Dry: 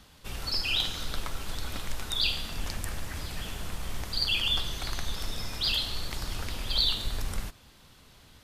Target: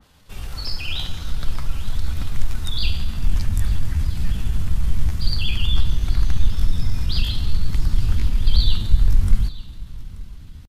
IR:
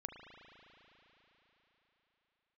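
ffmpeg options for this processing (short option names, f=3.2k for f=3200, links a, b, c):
-filter_complex "[0:a]asplit=2[a][b];[1:a]atrim=start_sample=2205,lowpass=2.3k[c];[b][c]afir=irnorm=-1:irlink=0,volume=-10.5dB[d];[a][d]amix=inputs=2:normalize=0,atempo=0.79,asubboost=boost=8:cutoff=190,aecho=1:1:881:0.106,adynamicequalizer=threshold=0.00891:dfrequency=2400:dqfactor=0.7:tfrequency=2400:tqfactor=0.7:attack=5:release=100:ratio=0.375:range=1.5:mode=cutabove:tftype=highshelf"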